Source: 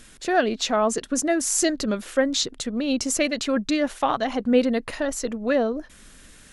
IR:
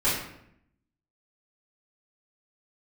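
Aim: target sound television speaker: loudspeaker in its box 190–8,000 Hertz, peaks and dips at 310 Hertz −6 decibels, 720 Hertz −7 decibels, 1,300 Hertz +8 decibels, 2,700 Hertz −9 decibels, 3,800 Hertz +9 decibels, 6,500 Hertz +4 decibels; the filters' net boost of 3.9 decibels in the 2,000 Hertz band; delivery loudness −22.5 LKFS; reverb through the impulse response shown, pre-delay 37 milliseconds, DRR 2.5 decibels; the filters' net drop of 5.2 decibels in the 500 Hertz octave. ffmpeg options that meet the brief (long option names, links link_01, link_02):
-filter_complex "[0:a]equalizer=frequency=500:width_type=o:gain=-4,equalizer=frequency=2000:width_type=o:gain=4.5,asplit=2[link_01][link_02];[1:a]atrim=start_sample=2205,adelay=37[link_03];[link_02][link_03]afir=irnorm=-1:irlink=0,volume=-15.5dB[link_04];[link_01][link_04]amix=inputs=2:normalize=0,highpass=frequency=190:width=0.5412,highpass=frequency=190:width=1.3066,equalizer=frequency=310:width_type=q:width=4:gain=-6,equalizer=frequency=720:width_type=q:width=4:gain=-7,equalizer=frequency=1300:width_type=q:width=4:gain=8,equalizer=frequency=2700:width_type=q:width=4:gain=-9,equalizer=frequency=3800:width_type=q:width=4:gain=9,equalizer=frequency=6500:width_type=q:width=4:gain=4,lowpass=frequency=8000:width=0.5412,lowpass=frequency=8000:width=1.3066,volume=-0.5dB"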